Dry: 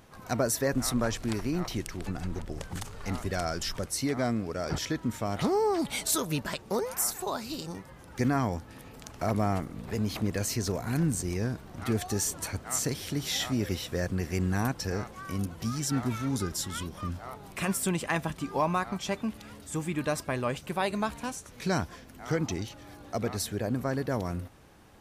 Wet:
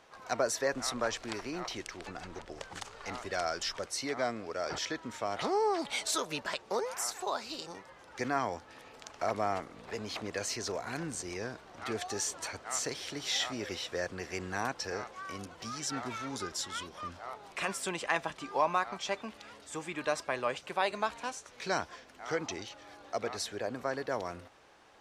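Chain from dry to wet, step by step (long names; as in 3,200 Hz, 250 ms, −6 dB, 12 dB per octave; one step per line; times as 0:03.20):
three-way crossover with the lows and the highs turned down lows −17 dB, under 390 Hz, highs −20 dB, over 7,700 Hz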